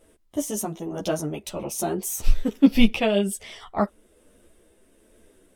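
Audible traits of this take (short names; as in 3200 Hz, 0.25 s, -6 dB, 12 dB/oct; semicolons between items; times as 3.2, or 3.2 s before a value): tremolo triangle 1.2 Hz, depth 35%; a shimmering, thickened sound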